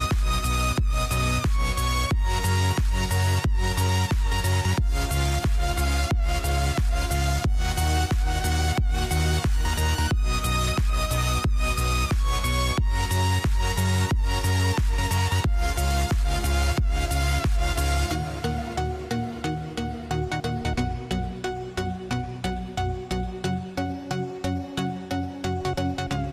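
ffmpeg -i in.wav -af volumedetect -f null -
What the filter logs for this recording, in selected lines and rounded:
mean_volume: -23.5 dB
max_volume: -14.5 dB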